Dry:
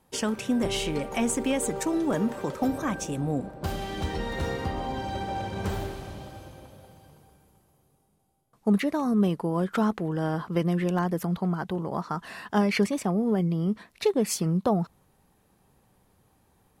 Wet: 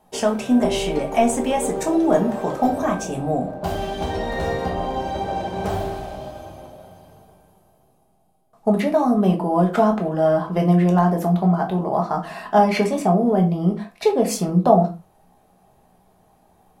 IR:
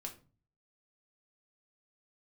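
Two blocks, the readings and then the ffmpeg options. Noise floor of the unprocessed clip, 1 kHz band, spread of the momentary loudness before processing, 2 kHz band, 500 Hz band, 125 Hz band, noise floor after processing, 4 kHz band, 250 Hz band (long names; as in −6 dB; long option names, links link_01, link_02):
−66 dBFS, +11.0 dB, 8 LU, +3.5 dB, +9.5 dB, +7.0 dB, −59 dBFS, +3.0 dB, +6.0 dB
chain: -filter_complex "[0:a]equalizer=frequency=700:width=2.1:gain=13[link_01];[1:a]atrim=start_sample=2205,afade=type=out:start_time=0.23:duration=0.01,atrim=end_sample=10584,asetrate=43659,aresample=44100[link_02];[link_01][link_02]afir=irnorm=-1:irlink=0,volume=6dB"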